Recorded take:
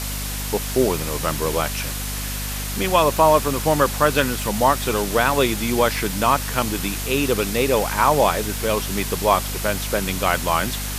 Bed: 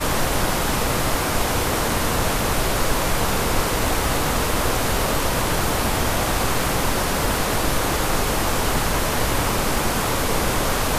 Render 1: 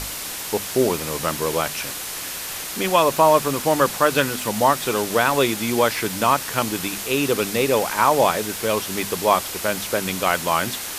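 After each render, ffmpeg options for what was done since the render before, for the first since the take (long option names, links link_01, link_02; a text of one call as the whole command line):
ffmpeg -i in.wav -af "bandreject=frequency=50:width_type=h:width=6,bandreject=frequency=100:width_type=h:width=6,bandreject=frequency=150:width_type=h:width=6,bandreject=frequency=200:width_type=h:width=6,bandreject=frequency=250:width_type=h:width=6" out.wav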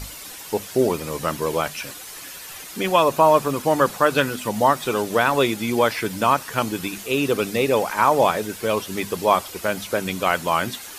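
ffmpeg -i in.wav -af "afftdn=noise_reduction=10:noise_floor=-31" out.wav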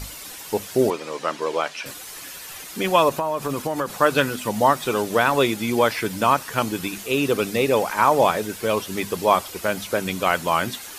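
ffmpeg -i in.wav -filter_complex "[0:a]asettb=1/sr,asplit=3[link_01][link_02][link_03];[link_01]atrim=end=0.904[link_04];[link_02]atrim=start=0.9:end=1.86,asetpts=PTS-STARTPTS,afade=type=in:duration=0.004:curve=qsin,afade=type=out:start_time=0.956:duration=0.004:curve=qsin,highpass=340,lowpass=5500[link_05];[link_03]atrim=start=1.856[link_06];[link_04][link_05]acrossfade=duration=0.004:curve1=hsin:curve2=qsin[link_07];[link_07][link_06]acrossfade=duration=0.004:curve1=qsin:curve2=hsin,asettb=1/sr,asplit=3[link_08][link_09][link_10];[link_08]atrim=end=3.094[link_11];[link_09]atrim=start=3.09:end=3.99,asetpts=PTS-STARTPTS,afade=type=in:duration=0.004:curve=qsin,afade=type=out:start_time=0.896:duration=0.004:curve=qsin,acompressor=threshold=-20dB:ratio=6:attack=3.2:release=140:knee=1:detection=peak[link_12];[link_10]atrim=start=3.986[link_13];[link_11][link_12]acrossfade=duration=0.004:curve1=hsin:curve2=qsin[link_14];[link_14][link_13]acrossfade=duration=0.004:curve1=qsin:curve2=hsin" out.wav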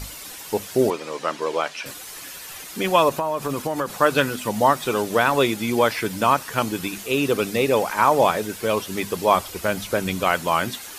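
ffmpeg -i in.wav -filter_complex "[0:a]asettb=1/sr,asplit=3[link_01][link_02][link_03];[link_01]atrim=end=9.334[link_04];[link_02]atrim=start=9.33:end=10.25,asetpts=PTS-STARTPTS,afade=type=in:duration=0.004:curve=qsin,afade=type=out:start_time=0.916:duration=0.004:curve=qsin,lowshelf=frequency=97:gain=9.5[link_05];[link_03]atrim=start=10.246[link_06];[link_04][link_05]acrossfade=duration=0.004:curve1=hsin:curve2=qsin[link_07];[link_07][link_06]acrossfade=duration=0.004:curve1=qsin:curve2=hsin" out.wav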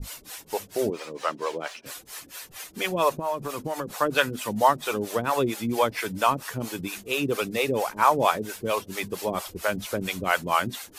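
ffmpeg -i in.wav -filter_complex "[0:a]acrusher=bits=9:mix=0:aa=0.000001,acrossover=split=440[link_01][link_02];[link_01]aeval=exprs='val(0)*(1-1/2+1/2*cos(2*PI*4.4*n/s))':channel_layout=same[link_03];[link_02]aeval=exprs='val(0)*(1-1/2-1/2*cos(2*PI*4.4*n/s))':channel_layout=same[link_04];[link_03][link_04]amix=inputs=2:normalize=0" out.wav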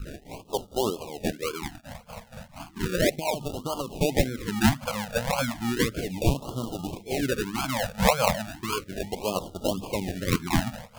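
ffmpeg -i in.wav -af "acrusher=samples=33:mix=1:aa=0.000001:lfo=1:lforange=19.8:lforate=1.8,afftfilt=real='re*(1-between(b*sr/1024,310*pow(2000/310,0.5+0.5*sin(2*PI*0.34*pts/sr))/1.41,310*pow(2000/310,0.5+0.5*sin(2*PI*0.34*pts/sr))*1.41))':imag='im*(1-between(b*sr/1024,310*pow(2000/310,0.5+0.5*sin(2*PI*0.34*pts/sr))/1.41,310*pow(2000/310,0.5+0.5*sin(2*PI*0.34*pts/sr))*1.41))':win_size=1024:overlap=0.75" out.wav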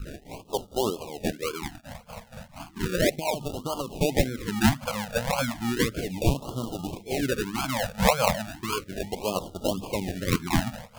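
ffmpeg -i in.wav -af anull out.wav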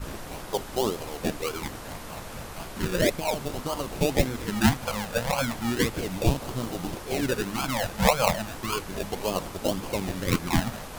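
ffmpeg -i in.wav -i bed.wav -filter_complex "[1:a]volume=-19dB[link_01];[0:a][link_01]amix=inputs=2:normalize=0" out.wav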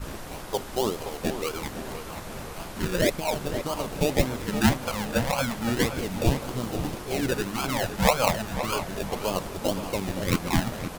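ffmpeg -i in.wav -filter_complex "[0:a]asplit=2[link_01][link_02];[link_02]adelay=519,lowpass=frequency=2600:poles=1,volume=-9.5dB,asplit=2[link_03][link_04];[link_04]adelay=519,lowpass=frequency=2600:poles=1,volume=0.47,asplit=2[link_05][link_06];[link_06]adelay=519,lowpass=frequency=2600:poles=1,volume=0.47,asplit=2[link_07][link_08];[link_08]adelay=519,lowpass=frequency=2600:poles=1,volume=0.47,asplit=2[link_09][link_10];[link_10]adelay=519,lowpass=frequency=2600:poles=1,volume=0.47[link_11];[link_01][link_03][link_05][link_07][link_09][link_11]amix=inputs=6:normalize=0" out.wav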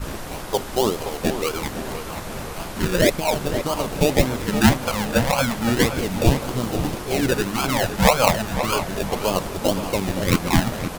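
ffmpeg -i in.wav -af "volume=6dB,alimiter=limit=-2dB:level=0:latency=1" out.wav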